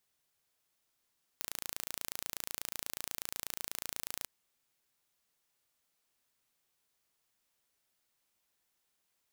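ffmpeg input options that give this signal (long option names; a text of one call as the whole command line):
ffmpeg -f lavfi -i "aevalsrc='0.299*eq(mod(n,1564),0)':duration=2.85:sample_rate=44100" out.wav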